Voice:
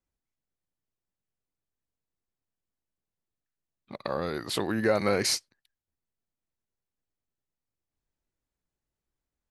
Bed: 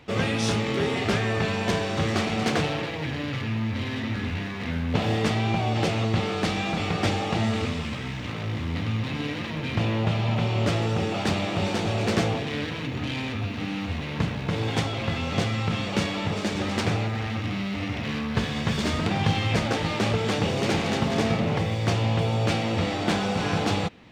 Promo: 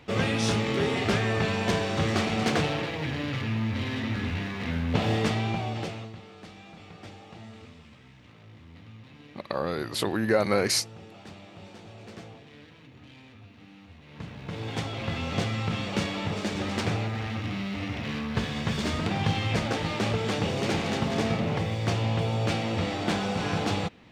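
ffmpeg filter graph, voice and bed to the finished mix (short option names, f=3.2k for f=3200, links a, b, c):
-filter_complex "[0:a]adelay=5450,volume=1.5dB[a];[1:a]volume=16.5dB,afade=t=out:st=5.16:d=1:silence=0.105925,afade=t=in:st=14.02:d=1.19:silence=0.133352[b];[a][b]amix=inputs=2:normalize=0"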